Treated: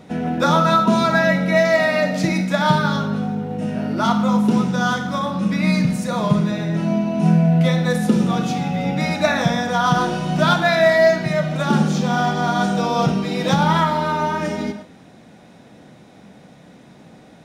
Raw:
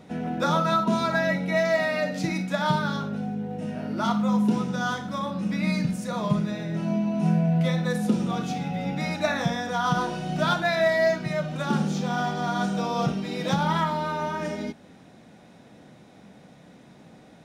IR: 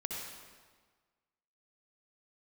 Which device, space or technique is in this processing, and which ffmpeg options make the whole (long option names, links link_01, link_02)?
keyed gated reverb: -filter_complex "[0:a]asplit=3[link_01][link_02][link_03];[1:a]atrim=start_sample=2205[link_04];[link_02][link_04]afir=irnorm=-1:irlink=0[link_05];[link_03]apad=whole_len=769206[link_06];[link_05][link_06]sidechaingate=range=-33dB:threshold=-44dB:ratio=16:detection=peak,volume=-8.5dB[link_07];[link_01][link_07]amix=inputs=2:normalize=0,volume=5dB"